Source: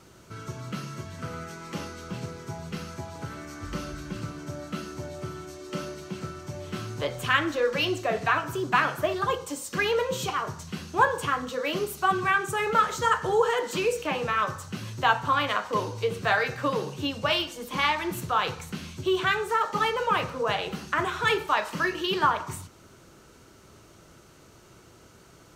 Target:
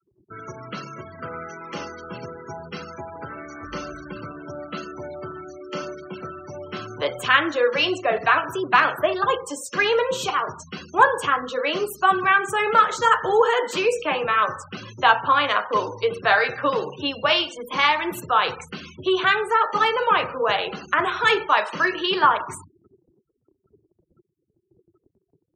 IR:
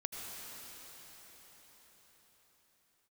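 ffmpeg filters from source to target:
-filter_complex "[0:a]afftfilt=real='re*gte(hypot(re,im),0.01)':imag='im*gte(hypot(re,im),0.01)':win_size=1024:overlap=0.75,agate=range=-16dB:threshold=-56dB:ratio=16:detection=peak,bass=f=250:g=-12,treble=f=4k:g=0,acrossover=split=170[a][b];[a]acompressor=threshold=-31dB:ratio=8[c];[c][b]amix=inputs=2:normalize=0,adynamicequalizer=threshold=0.00501:dfrequency=6400:dqfactor=0.7:tfrequency=6400:tqfactor=0.7:attack=5:release=100:ratio=0.375:range=3:mode=cutabove:tftype=highshelf,volume=6dB"

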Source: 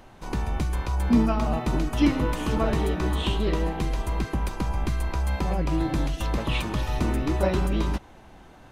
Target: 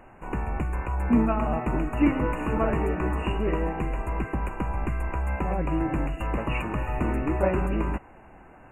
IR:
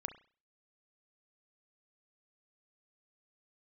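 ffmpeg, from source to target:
-filter_complex "[0:a]asplit=2[a][b];[1:a]atrim=start_sample=2205,lowshelf=f=430:g=-8[c];[b][c]afir=irnorm=-1:irlink=0,volume=-13.5dB[d];[a][d]amix=inputs=2:normalize=0,afftfilt=real='re*(1-between(b*sr/4096,2900,6600))':imag='im*(1-between(b*sr/4096,2900,6600))':win_size=4096:overlap=0.75,bass=f=250:g=-3,treble=f=4k:g=-13"

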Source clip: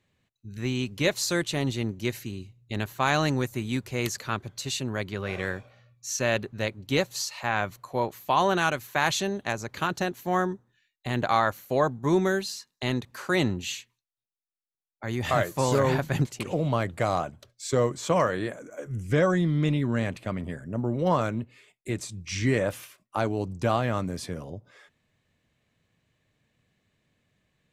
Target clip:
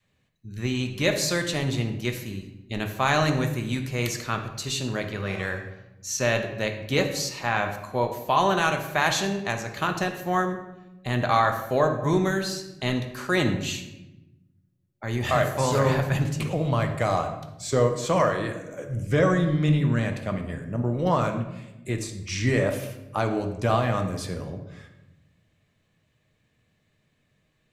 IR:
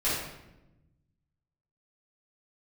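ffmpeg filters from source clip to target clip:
-filter_complex "[0:a]adynamicequalizer=threshold=0.0126:dfrequency=350:dqfactor=1:tfrequency=350:tqfactor=1:attack=5:release=100:ratio=0.375:range=2:mode=cutabove:tftype=bell,asplit=2[a][b];[1:a]atrim=start_sample=2205[c];[b][c]afir=irnorm=-1:irlink=0,volume=-14dB[d];[a][d]amix=inputs=2:normalize=0"

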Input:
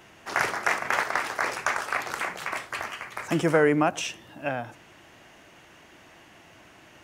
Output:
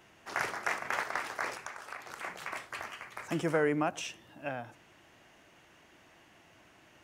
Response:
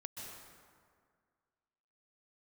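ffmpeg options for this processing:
-filter_complex "[0:a]asplit=3[a][b][c];[a]afade=t=out:st=1.56:d=0.02[d];[b]acompressor=threshold=-32dB:ratio=6,afade=t=in:st=1.56:d=0.02,afade=t=out:st=2.23:d=0.02[e];[c]afade=t=in:st=2.23:d=0.02[f];[d][e][f]amix=inputs=3:normalize=0,volume=-8dB"

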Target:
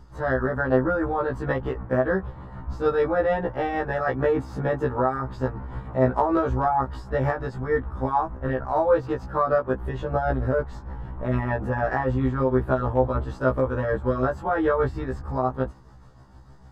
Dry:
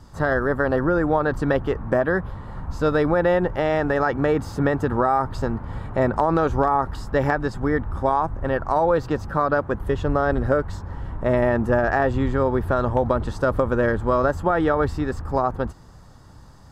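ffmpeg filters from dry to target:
-af "highshelf=f=4k:g=-10.5,tremolo=f=6.6:d=0.42,afftfilt=real='re*1.73*eq(mod(b,3),0)':imag='im*1.73*eq(mod(b,3),0)':win_size=2048:overlap=0.75,volume=1.5dB"

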